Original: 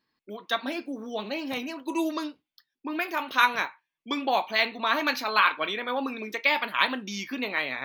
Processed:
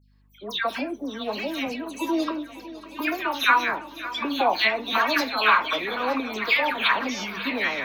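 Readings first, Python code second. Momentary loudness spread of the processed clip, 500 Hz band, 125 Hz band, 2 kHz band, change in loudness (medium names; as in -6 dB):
12 LU, +3.5 dB, no reading, +3.0 dB, +3.0 dB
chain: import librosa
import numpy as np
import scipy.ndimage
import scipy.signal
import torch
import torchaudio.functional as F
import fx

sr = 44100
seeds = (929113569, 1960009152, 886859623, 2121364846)

y = fx.hum_notches(x, sr, base_hz=50, count=4)
y = fx.dispersion(y, sr, late='lows', ms=145.0, hz=1900.0)
y = fx.add_hum(y, sr, base_hz=50, snr_db=34)
y = fx.echo_swing(y, sr, ms=922, ratio=1.5, feedback_pct=58, wet_db=-15.5)
y = F.gain(torch.from_numpy(y), 3.0).numpy()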